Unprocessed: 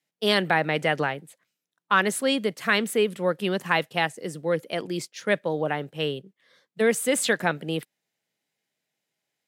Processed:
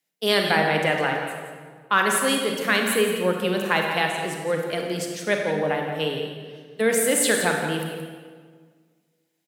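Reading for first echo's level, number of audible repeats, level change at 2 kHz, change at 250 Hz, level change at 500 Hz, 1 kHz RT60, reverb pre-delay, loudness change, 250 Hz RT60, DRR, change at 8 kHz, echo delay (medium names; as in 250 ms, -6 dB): -10.5 dB, 1, +2.5 dB, +1.5 dB, +2.5 dB, 1.6 s, 31 ms, +2.5 dB, 1.9 s, 1.0 dB, +6.5 dB, 172 ms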